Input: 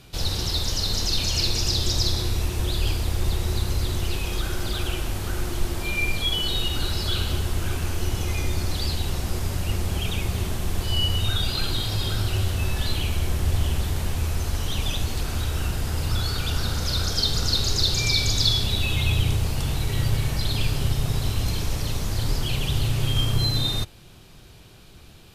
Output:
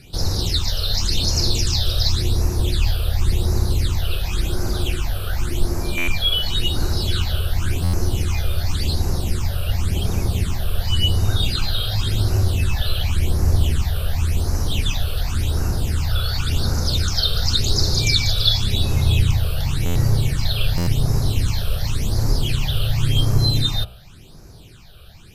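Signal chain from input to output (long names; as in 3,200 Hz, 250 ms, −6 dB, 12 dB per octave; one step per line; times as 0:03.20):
all-pass phaser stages 8, 0.91 Hz, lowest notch 260–3,200 Hz
hum removal 61.47 Hz, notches 22
buffer that repeats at 0:05.97/0:07.83/0:19.85/0:20.77, samples 512, times 8
level +5 dB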